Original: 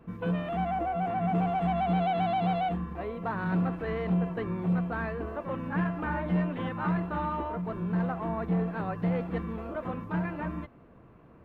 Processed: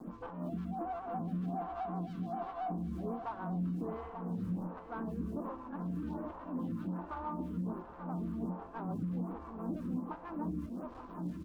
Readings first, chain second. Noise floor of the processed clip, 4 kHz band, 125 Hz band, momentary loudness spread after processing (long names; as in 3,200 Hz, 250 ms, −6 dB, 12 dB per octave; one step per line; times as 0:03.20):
−50 dBFS, below −15 dB, −9.5 dB, 5 LU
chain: bit reduction 9 bits
rotating-speaker cabinet horn 6 Hz
soft clipping −35 dBFS, distortion −8 dB
single-tap delay 1,065 ms −12.5 dB
healed spectral selection 0:04.05–0:04.70, 210–3,300 Hz both
octave-band graphic EQ 125/250/500/1,000/2,000 Hz −5/+11/−7/+8/−9 dB
downward compressor 6 to 1, threshold −41 dBFS, peak gain reduction 10 dB
high-shelf EQ 2,100 Hz −11.5 dB
single-tap delay 890 ms −9.5 dB
phaser with staggered stages 1.3 Hz
level +8 dB